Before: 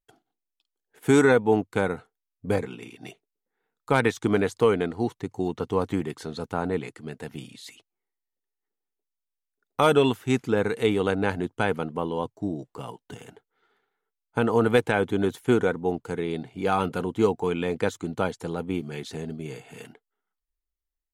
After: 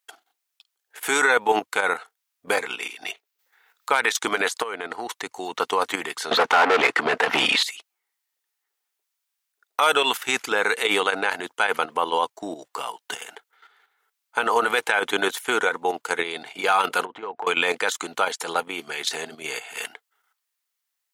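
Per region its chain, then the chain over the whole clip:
3.04–3.92 bell 9400 Hz -6 dB 0.99 oct + mismatched tape noise reduction encoder only
4.62–5.09 bell 5700 Hz -6 dB 2.9 oct + compressor 16:1, threshold -27 dBFS
6.31–7.63 LPF 3900 Hz 6 dB/oct + low shelf 130 Hz +11.5 dB + overdrive pedal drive 34 dB, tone 1000 Hz, clips at -10 dBFS
17.05–17.47 LPF 1800 Hz + compressor 10:1, threshold -32 dBFS
whole clip: HPF 1000 Hz 12 dB/oct; level quantiser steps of 10 dB; maximiser +26.5 dB; gain -7 dB

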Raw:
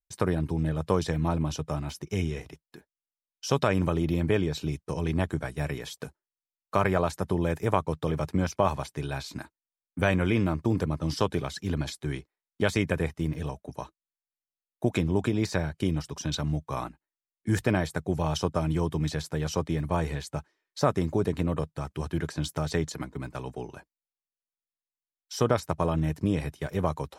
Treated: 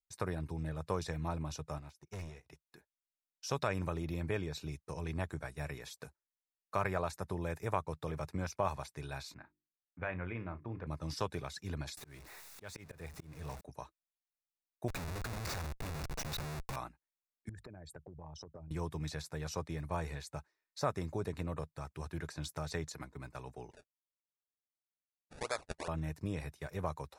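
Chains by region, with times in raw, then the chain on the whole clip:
1.78–2.5 hard clip -28.5 dBFS + upward expander 2.5:1, over -43 dBFS
9.34–10.87 ladder low-pass 3000 Hz, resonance 20% + notches 50/100/150/200/250/300/350/400 Hz + doubler 34 ms -13 dB
11.97–13.61 zero-crossing step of -35 dBFS + auto swell 0.343 s
14.88–16.76 bell 360 Hz -13 dB 0.36 oct + Schmitt trigger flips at -37 dBFS
17.49–18.71 formant sharpening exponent 2 + compressor 10:1, threshold -35 dBFS
23.71–25.88 three-band isolator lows -21 dB, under 490 Hz, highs -13 dB, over 4500 Hz + decimation with a swept rate 29× 2.6 Hz + brick-wall FIR low-pass 11000 Hz
whole clip: bell 250 Hz -7 dB 1.8 oct; notch 3100 Hz, Q 6.6; gain -7.5 dB

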